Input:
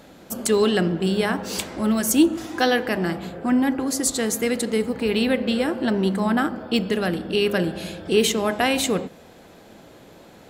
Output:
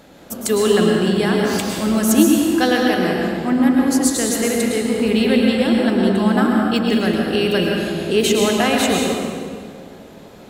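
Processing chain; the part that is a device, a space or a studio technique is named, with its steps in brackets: stairwell (reverberation RT60 2.1 s, pre-delay 101 ms, DRR -1 dB); trim +1 dB

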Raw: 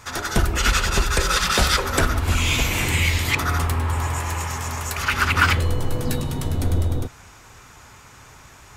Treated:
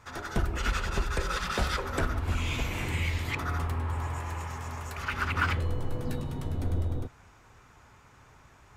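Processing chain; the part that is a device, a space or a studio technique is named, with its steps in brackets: through cloth (treble shelf 3.2 kHz -11 dB); trim -8.5 dB

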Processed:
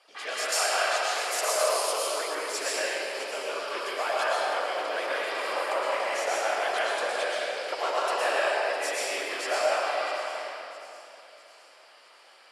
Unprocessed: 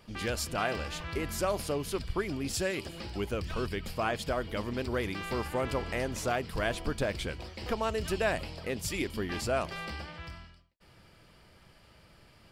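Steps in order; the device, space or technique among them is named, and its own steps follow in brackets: low-pass 11 kHz 24 dB/octave; whispering ghost (whisper effect; high-pass 550 Hz 24 dB/octave; reverberation RT60 3.1 s, pre-delay 105 ms, DRR -7 dB); 0.52–2.35 s: tone controls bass -9 dB, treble +8 dB; feedback echo behind a high-pass 657 ms, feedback 49%, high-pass 4 kHz, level -13 dB

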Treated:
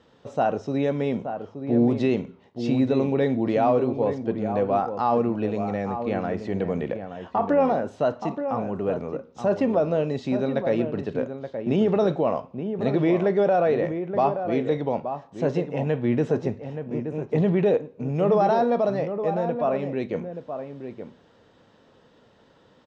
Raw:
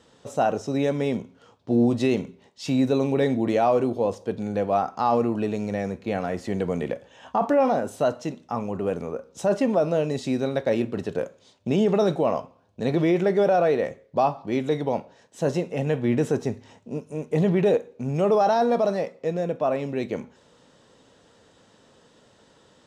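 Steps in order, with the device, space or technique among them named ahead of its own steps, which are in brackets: shout across a valley (distance through air 160 m; echo from a far wall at 150 m, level -8 dB)

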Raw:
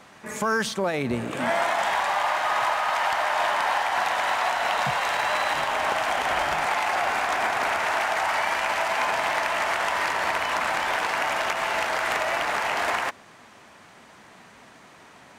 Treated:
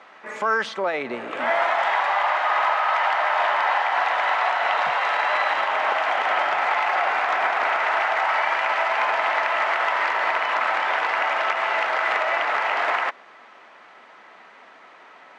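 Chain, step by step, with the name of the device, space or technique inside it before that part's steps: tin-can telephone (band-pass 450–3000 Hz; small resonant body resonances 1.3/2 kHz, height 8 dB, ringing for 85 ms); trim +3 dB

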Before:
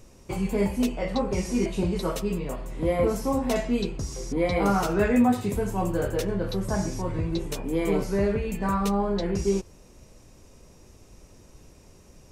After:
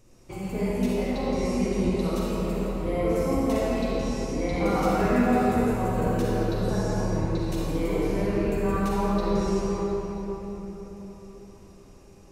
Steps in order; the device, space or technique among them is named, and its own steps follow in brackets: cathedral (reverberation RT60 4.8 s, pre-delay 37 ms, DRR -7 dB); trim -8 dB

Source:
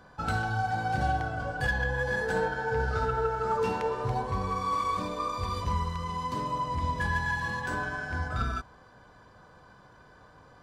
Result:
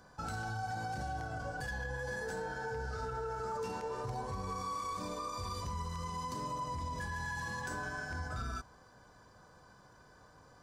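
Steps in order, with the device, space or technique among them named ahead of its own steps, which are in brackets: over-bright horn tweeter (resonant high shelf 4.4 kHz +7 dB, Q 1.5; peak limiter -26 dBFS, peak gain reduction 9.5 dB); trim -5 dB

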